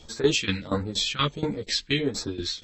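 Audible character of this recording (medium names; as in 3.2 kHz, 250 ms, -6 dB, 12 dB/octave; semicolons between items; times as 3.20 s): phasing stages 2, 1.5 Hz, lowest notch 630–3100 Hz; tremolo saw down 4.2 Hz, depth 90%; a shimmering, thickened sound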